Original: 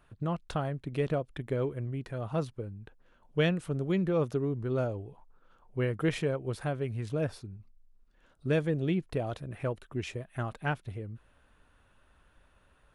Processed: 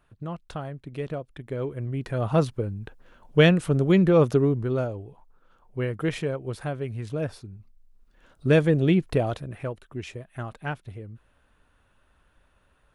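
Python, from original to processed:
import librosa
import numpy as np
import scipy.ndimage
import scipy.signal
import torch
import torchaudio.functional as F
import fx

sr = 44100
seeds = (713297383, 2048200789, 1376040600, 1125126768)

y = fx.gain(x, sr, db=fx.line((1.43, -2.0), (2.23, 10.0), (4.44, 10.0), (4.89, 2.0), (7.5, 2.0), (8.55, 9.0), (9.19, 9.0), (9.72, 0.0)))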